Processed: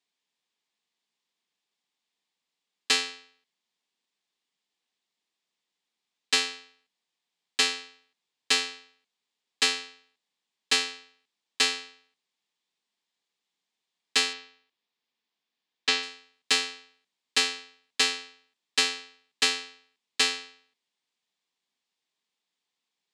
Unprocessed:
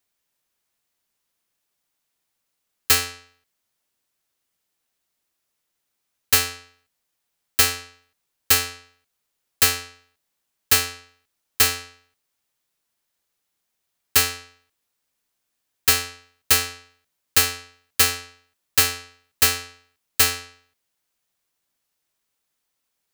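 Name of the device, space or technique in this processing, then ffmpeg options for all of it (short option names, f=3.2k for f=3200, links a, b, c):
television speaker: -filter_complex "[0:a]asettb=1/sr,asplit=3[a][b][c];[a]atrim=end=14.334[d];[b]atrim=start=14.33:end=16.03,asetpts=PTS-STARTPTS,afade=t=in:d=0.004:c=qsin,afade=t=out:st=1.696:d=0.004:c=qsin,lowpass=5.5k[e];[c]atrim=start=16.026[f];[d][e]acrossfade=d=0.004:c1=hsin:c2=qsin[g];[g][f]acrossfade=d=0.004:c1=qsin:c2=hsin,highpass=f=180:w=0.5412,highpass=f=180:w=1.3066,equalizer=f=320:t=q:w=4:g=-4,equalizer=f=590:t=q:w=4:g=-8,equalizer=f=1.4k:t=q:w=4:g=-8,equalizer=f=3.5k:t=q:w=4:g=4,equalizer=f=6.1k:t=q:w=4:g=-5,lowpass=f=7.1k:w=0.5412,lowpass=f=7.1k:w=1.3066,volume=-2.5dB"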